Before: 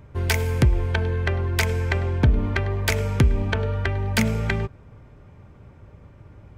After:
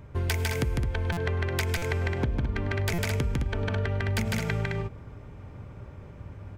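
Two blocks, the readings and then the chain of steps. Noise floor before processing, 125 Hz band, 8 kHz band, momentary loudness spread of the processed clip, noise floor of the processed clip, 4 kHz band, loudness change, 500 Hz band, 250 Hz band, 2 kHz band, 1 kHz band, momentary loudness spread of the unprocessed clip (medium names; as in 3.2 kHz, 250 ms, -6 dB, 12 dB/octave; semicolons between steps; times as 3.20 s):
-49 dBFS, -6.0 dB, -5.0 dB, 17 LU, -46 dBFS, -5.0 dB, -6.0 dB, -4.5 dB, -6.0 dB, -5.0 dB, -5.0 dB, 4 LU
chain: loudspeakers at several distances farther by 52 m -1 dB, 73 m -5 dB; compression 6:1, threshold -25 dBFS, peak gain reduction 13 dB; buffer glitch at 1.12/1.77/2.93 s, samples 256, times 8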